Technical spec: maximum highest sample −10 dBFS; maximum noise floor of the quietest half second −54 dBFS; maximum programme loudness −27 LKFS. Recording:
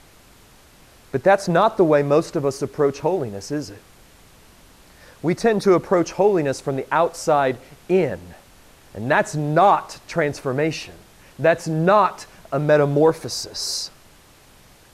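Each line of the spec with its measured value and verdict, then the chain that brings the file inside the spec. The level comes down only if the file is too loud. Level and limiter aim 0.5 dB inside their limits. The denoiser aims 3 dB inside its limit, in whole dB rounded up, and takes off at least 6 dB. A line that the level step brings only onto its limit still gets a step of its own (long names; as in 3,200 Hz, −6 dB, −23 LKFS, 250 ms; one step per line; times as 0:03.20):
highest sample −5.5 dBFS: out of spec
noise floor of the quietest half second −50 dBFS: out of spec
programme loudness −20.0 LKFS: out of spec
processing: level −7.5 dB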